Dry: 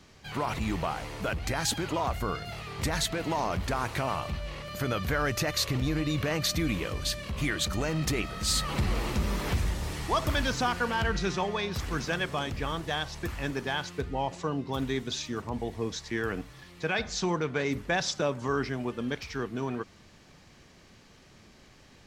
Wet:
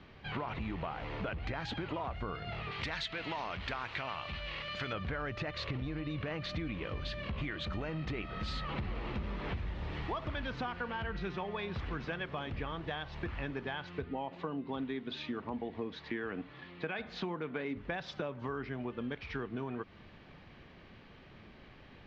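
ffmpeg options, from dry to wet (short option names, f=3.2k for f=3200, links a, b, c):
-filter_complex "[0:a]asettb=1/sr,asplit=3[a][b][c];[a]atrim=end=2.714[d];[b]atrim=start=2.71:end=4.93,asetpts=PTS-STARTPTS,afade=t=in:d=0.004:c=qsin,afade=t=out:st=2.216:d=0.004:c=qsin,tiltshelf=f=1.4k:g=-8.5[e];[c]atrim=start=4.926[f];[d][e]acrossfade=d=0.004:c1=hsin:c2=qsin[g];[g][f]acrossfade=d=0.004:c1=qsin:c2=hsin,asettb=1/sr,asplit=3[h][i][j];[h]atrim=end=14.044[k];[i]atrim=start=14.04:end=17.77,asetpts=PTS-STARTPTS,afade=t=in:d=0.004:c=qsin,afade=t=out:st=3.726:d=0.004:c=qsin,highpass=110,equalizer=f=120:t=q:w=4:g=-7,equalizer=f=260:t=q:w=4:g=4,equalizer=f=5.7k:t=q:w=4:g=-5,lowpass=f=6.8k:w=0.5412,lowpass=f=6.8k:w=1.3066[l];[j]atrim=start=17.766[m];[k][l]acrossfade=d=0.004:c1=hsin:c2=qsin[n];[n][m]acrossfade=d=0.004:c1=qsin:c2=hsin,lowpass=f=3.4k:w=0.5412,lowpass=f=3.4k:w=1.3066,acompressor=threshold=-36dB:ratio=6,volume=1dB"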